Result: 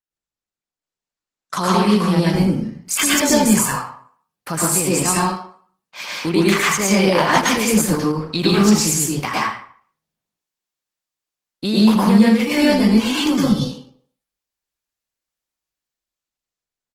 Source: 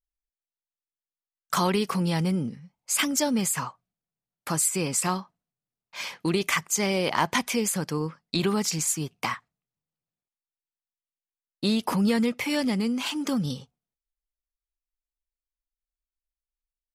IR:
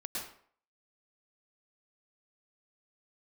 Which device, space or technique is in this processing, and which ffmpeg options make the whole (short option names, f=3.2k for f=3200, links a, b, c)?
far-field microphone of a smart speaker: -filter_complex "[0:a]asettb=1/sr,asplit=3[a][b][c];[a]atrim=end=12.544[d];[b]atrim=start=12.54:end=13.1,asetpts=PTS-STARTPTS,afade=t=in:d=0.004:c=qsin,afade=t=out:st=0.556:d=0.004:c=qsin,asplit=2[e][f];[f]adelay=19,volume=-11dB[g];[e][g]amix=inputs=2:normalize=0,atrim=end_sample=24696[h];[c]atrim=start=13.096[i];[d][h]acrossfade=d=0.004:c1=hsin:c2=qsin[j];[j][i]acrossfade=d=0.004:c1=qsin:c2=hsin,aecho=1:1:78:0.211[k];[1:a]atrim=start_sample=2205[l];[k][l]afir=irnorm=-1:irlink=0,highpass=87,dynaudnorm=f=260:g=11:m=12dB" -ar 48000 -c:a libopus -b:a 16k